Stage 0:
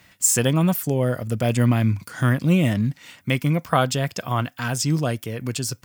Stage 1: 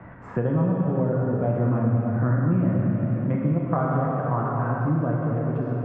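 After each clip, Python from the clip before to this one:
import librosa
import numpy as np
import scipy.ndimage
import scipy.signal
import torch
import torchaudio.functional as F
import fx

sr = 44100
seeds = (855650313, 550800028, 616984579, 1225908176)

y = scipy.signal.sosfilt(scipy.signal.butter(4, 1300.0, 'lowpass', fs=sr, output='sos'), x)
y = fx.rev_plate(y, sr, seeds[0], rt60_s=3.3, hf_ratio=0.9, predelay_ms=0, drr_db=-3.5)
y = fx.band_squash(y, sr, depth_pct=70)
y = y * librosa.db_to_amplitude(-6.5)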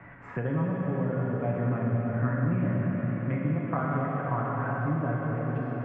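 y = fx.peak_eq(x, sr, hz=2200.0, db=11.0, octaves=1.2)
y = y + 0.32 * np.pad(y, (int(7.1 * sr / 1000.0), 0))[:len(y)]
y = fx.echo_swell(y, sr, ms=93, loudest=5, wet_db=-15)
y = y * librosa.db_to_amplitude(-7.5)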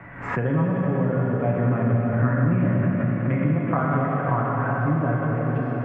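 y = fx.pre_swell(x, sr, db_per_s=77.0)
y = y * librosa.db_to_amplitude(6.0)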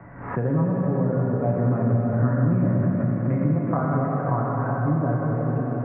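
y = scipy.signal.sosfilt(scipy.signal.butter(2, 1100.0, 'lowpass', fs=sr, output='sos'), x)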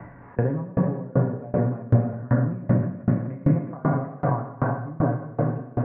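y = fx.notch(x, sr, hz=1300.0, q=11.0)
y = fx.tremolo_decay(y, sr, direction='decaying', hz=2.6, depth_db=26)
y = y * librosa.db_to_amplitude(6.0)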